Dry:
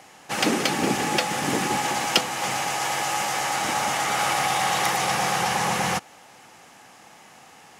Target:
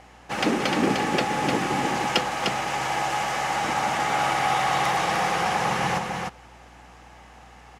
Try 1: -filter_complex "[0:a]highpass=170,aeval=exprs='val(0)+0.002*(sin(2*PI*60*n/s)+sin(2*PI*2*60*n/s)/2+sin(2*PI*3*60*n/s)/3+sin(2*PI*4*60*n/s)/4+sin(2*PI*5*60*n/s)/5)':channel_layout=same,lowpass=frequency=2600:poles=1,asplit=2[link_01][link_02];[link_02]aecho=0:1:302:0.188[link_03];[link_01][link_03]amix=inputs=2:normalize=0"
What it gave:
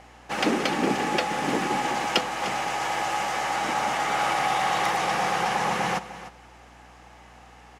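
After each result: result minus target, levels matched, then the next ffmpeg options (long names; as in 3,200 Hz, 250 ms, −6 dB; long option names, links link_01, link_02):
echo-to-direct −10 dB; 125 Hz band −4.0 dB
-filter_complex "[0:a]highpass=170,aeval=exprs='val(0)+0.002*(sin(2*PI*60*n/s)+sin(2*PI*2*60*n/s)/2+sin(2*PI*3*60*n/s)/3+sin(2*PI*4*60*n/s)/4+sin(2*PI*5*60*n/s)/5)':channel_layout=same,lowpass=frequency=2600:poles=1,asplit=2[link_01][link_02];[link_02]aecho=0:1:302:0.596[link_03];[link_01][link_03]amix=inputs=2:normalize=0"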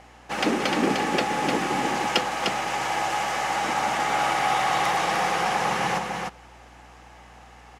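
125 Hz band −4.0 dB
-filter_complex "[0:a]aeval=exprs='val(0)+0.002*(sin(2*PI*60*n/s)+sin(2*PI*2*60*n/s)/2+sin(2*PI*3*60*n/s)/3+sin(2*PI*4*60*n/s)/4+sin(2*PI*5*60*n/s)/5)':channel_layout=same,lowpass=frequency=2600:poles=1,asplit=2[link_01][link_02];[link_02]aecho=0:1:302:0.596[link_03];[link_01][link_03]amix=inputs=2:normalize=0"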